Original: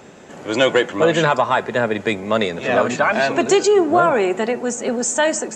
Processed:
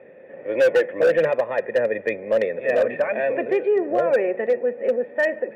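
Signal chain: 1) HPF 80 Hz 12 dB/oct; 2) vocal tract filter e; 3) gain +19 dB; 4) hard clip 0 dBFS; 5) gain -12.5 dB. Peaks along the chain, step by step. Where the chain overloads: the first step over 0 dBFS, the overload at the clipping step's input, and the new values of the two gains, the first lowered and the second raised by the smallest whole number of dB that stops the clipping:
-3.5, -10.0, +9.0, 0.0, -12.5 dBFS; step 3, 9.0 dB; step 3 +10 dB, step 5 -3.5 dB

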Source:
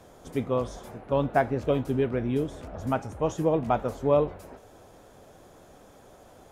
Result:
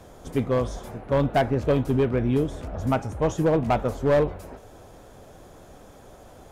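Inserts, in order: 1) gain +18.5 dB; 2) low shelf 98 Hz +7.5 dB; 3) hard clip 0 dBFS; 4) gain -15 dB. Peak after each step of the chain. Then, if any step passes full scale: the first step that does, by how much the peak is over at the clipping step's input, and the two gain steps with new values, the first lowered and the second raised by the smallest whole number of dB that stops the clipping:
+10.0, +9.5, 0.0, -15.0 dBFS; step 1, 9.5 dB; step 1 +8.5 dB, step 4 -5 dB

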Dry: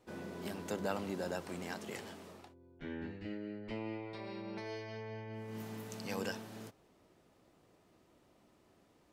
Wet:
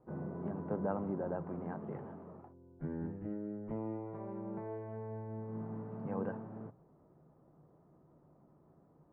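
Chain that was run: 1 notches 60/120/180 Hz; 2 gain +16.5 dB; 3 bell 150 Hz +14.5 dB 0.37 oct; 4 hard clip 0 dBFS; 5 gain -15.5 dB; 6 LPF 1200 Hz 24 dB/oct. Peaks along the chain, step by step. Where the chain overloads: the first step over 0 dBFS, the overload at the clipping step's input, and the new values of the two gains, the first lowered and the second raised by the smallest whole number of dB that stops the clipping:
-22.0, -5.5, -5.5, -5.5, -21.0, -22.0 dBFS; no overload

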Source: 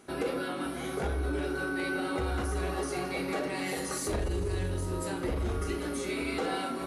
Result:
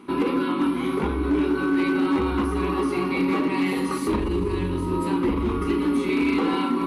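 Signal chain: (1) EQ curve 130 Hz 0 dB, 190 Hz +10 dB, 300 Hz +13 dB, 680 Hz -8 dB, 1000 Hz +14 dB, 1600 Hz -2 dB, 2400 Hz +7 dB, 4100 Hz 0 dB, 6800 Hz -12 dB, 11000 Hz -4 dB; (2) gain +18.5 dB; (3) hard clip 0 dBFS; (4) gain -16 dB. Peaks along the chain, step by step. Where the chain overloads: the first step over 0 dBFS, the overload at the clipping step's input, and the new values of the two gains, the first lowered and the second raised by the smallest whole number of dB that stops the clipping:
-12.5, +6.0, 0.0, -16.0 dBFS; step 2, 6.0 dB; step 2 +12.5 dB, step 4 -10 dB

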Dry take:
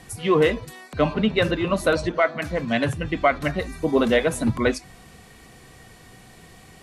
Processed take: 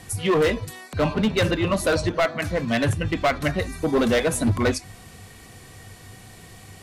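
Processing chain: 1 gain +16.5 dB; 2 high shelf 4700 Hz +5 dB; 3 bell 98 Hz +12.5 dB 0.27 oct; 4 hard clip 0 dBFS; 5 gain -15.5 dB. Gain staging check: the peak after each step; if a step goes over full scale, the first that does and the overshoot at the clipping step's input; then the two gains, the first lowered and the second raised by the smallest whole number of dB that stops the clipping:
+9.0, +9.5, +10.0, 0.0, -15.5 dBFS; step 1, 10.0 dB; step 1 +6.5 dB, step 5 -5.5 dB

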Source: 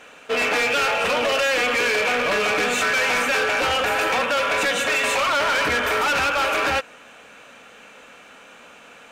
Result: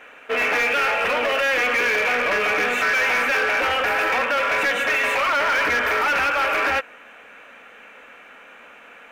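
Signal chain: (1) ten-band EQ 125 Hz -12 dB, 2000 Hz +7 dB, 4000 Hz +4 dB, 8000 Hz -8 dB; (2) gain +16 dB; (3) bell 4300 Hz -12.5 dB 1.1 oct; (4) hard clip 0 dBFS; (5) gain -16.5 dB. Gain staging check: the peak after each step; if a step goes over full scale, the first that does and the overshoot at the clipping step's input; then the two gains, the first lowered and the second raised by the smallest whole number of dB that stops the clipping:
-8.5, +7.5, +4.5, 0.0, -16.5 dBFS; step 2, 4.5 dB; step 2 +11 dB, step 5 -11.5 dB

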